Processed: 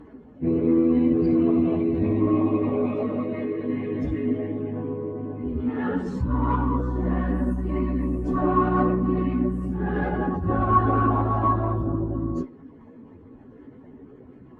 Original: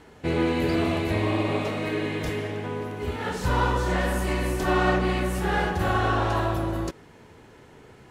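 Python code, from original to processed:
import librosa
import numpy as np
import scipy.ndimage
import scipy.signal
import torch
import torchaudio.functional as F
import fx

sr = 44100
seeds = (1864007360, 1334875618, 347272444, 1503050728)

y = fx.envelope_sharpen(x, sr, power=2.0)
y = fx.cheby_harmonics(y, sr, harmonics=(5, 6), levels_db=(-26, -36), full_scale_db=-11.0)
y = fx.stretch_vocoder_free(y, sr, factor=1.8)
y = fx.small_body(y, sr, hz=(260.0, 1100.0), ring_ms=65, db=14)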